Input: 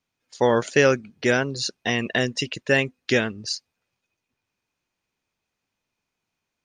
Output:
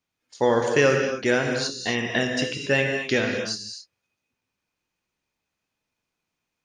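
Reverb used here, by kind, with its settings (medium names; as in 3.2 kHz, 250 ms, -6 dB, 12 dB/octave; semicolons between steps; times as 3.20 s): gated-style reverb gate 290 ms flat, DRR 2 dB; trim -2.5 dB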